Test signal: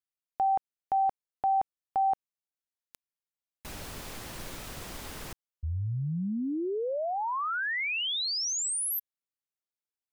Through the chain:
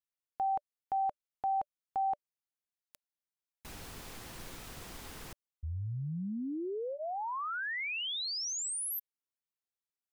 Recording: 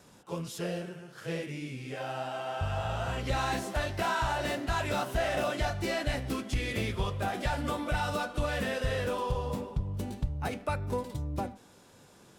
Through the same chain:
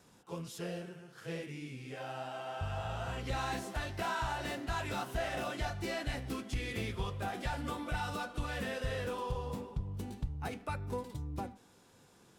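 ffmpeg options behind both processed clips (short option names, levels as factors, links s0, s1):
-af "bandreject=f=590:w=12,volume=0.531"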